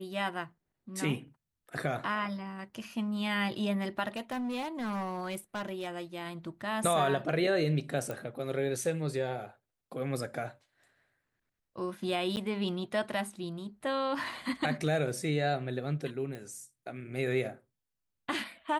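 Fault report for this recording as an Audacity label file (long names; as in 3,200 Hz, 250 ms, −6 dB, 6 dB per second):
4.070000	5.870000	clipping −31.5 dBFS
8.110000	8.110000	click −23 dBFS
12.360000	12.370000	drop-out 9.5 ms
16.350000	16.350000	click −29 dBFS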